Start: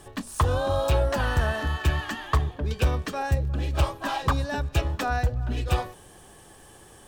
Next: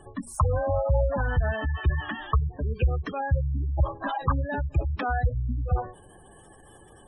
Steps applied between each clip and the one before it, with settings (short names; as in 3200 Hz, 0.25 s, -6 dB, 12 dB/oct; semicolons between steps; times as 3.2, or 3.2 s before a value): spectral gate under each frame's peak -15 dB strong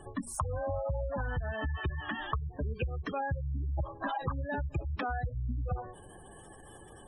compressor 12:1, threshold -30 dBFS, peak gain reduction 13.5 dB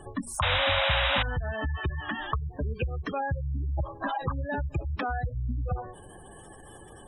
painted sound noise, 0.42–1.23, 530–3900 Hz -30 dBFS; gain +3.5 dB